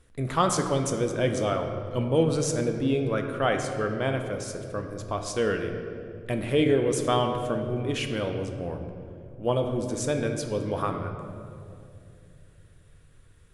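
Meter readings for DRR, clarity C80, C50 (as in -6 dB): 4.5 dB, 7.5 dB, 6.5 dB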